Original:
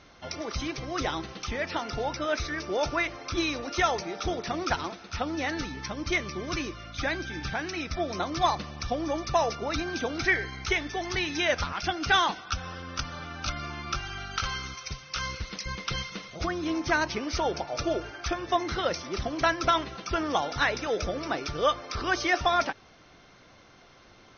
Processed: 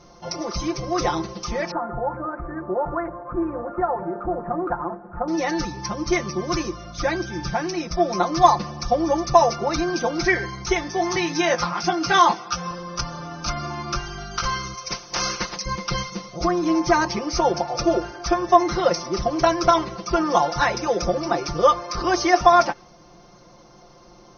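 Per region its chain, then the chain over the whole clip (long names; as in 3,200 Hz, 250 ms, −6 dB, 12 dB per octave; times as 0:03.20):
0:01.71–0:05.28: elliptic low-pass filter 1,600 Hz, stop band 60 dB + mains-hum notches 50/100/150/200/250/300/350/400 Hz + downward compressor 2 to 1, threshold −31 dBFS
0:10.84–0:12.71: high-pass filter 110 Hz + double-tracking delay 18 ms −7.5 dB
0:14.89–0:15.55: ceiling on every frequency bin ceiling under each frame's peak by 22 dB + dynamic equaliser 1,800 Hz, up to +5 dB, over −47 dBFS, Q 0.73
whole clip: flat-topped bell 2,300 Hz −12 dB; comb filter 5.7 ms, depth 97%; dynamic equaliser 1,800 Hz, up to +7 dB, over −43 dBFS, Q 0.84; level +4.5 dB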